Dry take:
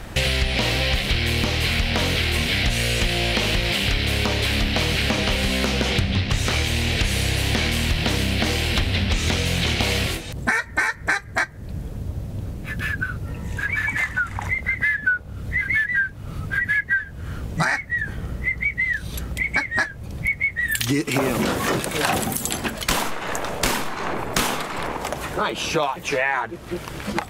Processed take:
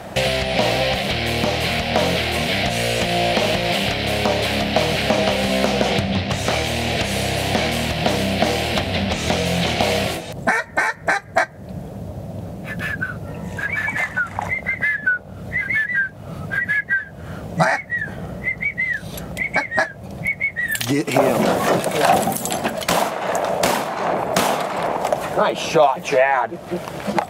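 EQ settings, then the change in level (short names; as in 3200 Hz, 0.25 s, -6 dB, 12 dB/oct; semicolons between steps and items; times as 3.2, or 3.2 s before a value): HPF 100 Hz 12 dB/oct; bell 180 Hz +6.5 dB 0.37 oct; bell 660 Hz +12.5 dB 0.84 oct; 0.0 dB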